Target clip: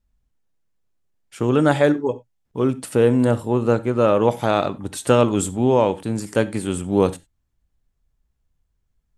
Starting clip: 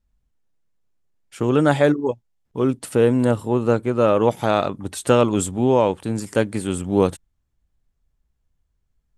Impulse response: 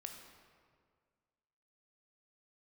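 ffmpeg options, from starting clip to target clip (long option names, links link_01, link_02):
-filter_complex "[0:a]asplit=2[link_01][link_02];[1:a]atrim=start_sample=2205,afade=type=out:start_time=0.18:duration=0.01,atrim=end_sample=8379,asetrate=57330,aresample=44100[link_03];[link_02][link_03]afir=irnorm=-1:irlink=0,volume=2dB[link_04];[link_01][link_04]amix=inputs=2:normalize=0,volume=-3.5dB"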